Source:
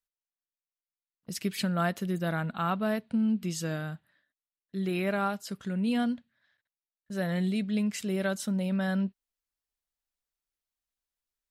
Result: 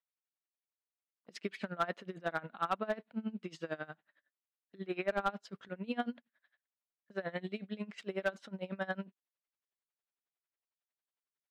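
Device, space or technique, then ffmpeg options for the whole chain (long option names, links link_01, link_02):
helicopter radio: -filter_complex "[0:a]highpass=370,lowpass=2700,aeval=exprs='val(0)*pow(10,-23*(0.5-0.5*cos(2*PI*11*n/s))/20)':channel_layout=same,asoftclip=type=hard:threshold=-25.5dB,asettb=1/sr,asplit=3[link_01][link_02][link_03];[link_01]atrim=end=5.124[link_04];[link_02]atrim=start=5.12:end=5.69,asetpts=PTS-STARTPTS,afade=type=in:duration=0.004:curve=qsin,afade=type=out:start_time=0.566:duration=0.004:curve=qsin,lowshelf=frequency=160:gain=11[link_05];[link_03]atrim=start=5.686[link_06];[link_04][link_05]acrossfade=duration=0.004:curve1=hsin:curve2=qsin[link_07];[link_07][link_06]acrossfade=duration=0.004:curve1=qsin:curve2=hsin,volume=2.5dB"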